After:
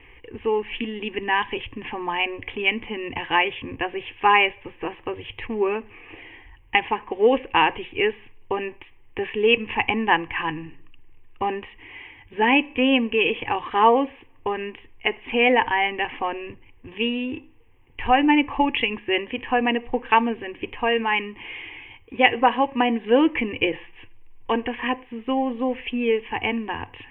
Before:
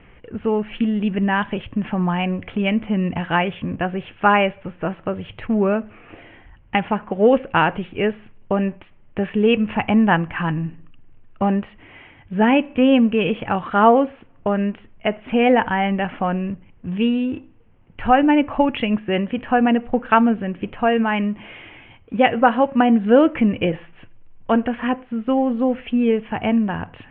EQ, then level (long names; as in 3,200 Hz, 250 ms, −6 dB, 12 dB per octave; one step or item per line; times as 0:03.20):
high-shelf EQ 2,200 Hz +12 dB
phaser with its sweep stopped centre 930 Hz, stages 8
−1.0 dB